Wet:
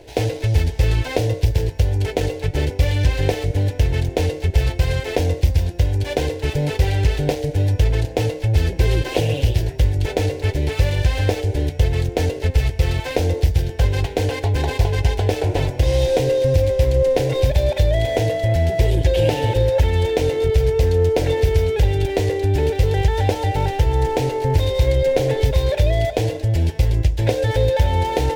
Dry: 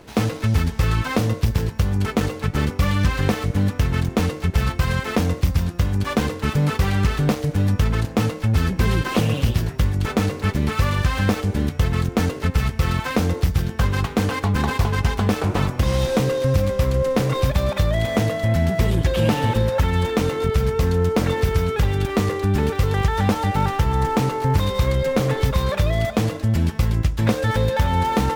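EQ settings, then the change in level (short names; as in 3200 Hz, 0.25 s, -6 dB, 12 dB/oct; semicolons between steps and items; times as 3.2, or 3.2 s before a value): high shelf 4500 Hz -6 dB; high shelf 12000 Hz -3 dB; fixed phaser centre 500 Hz, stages 4; +5.0 dB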